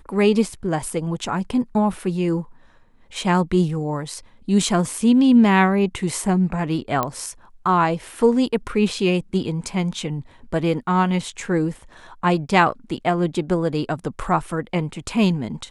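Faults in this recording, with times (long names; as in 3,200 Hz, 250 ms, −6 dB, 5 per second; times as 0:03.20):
0:07.03: click −8 dBFS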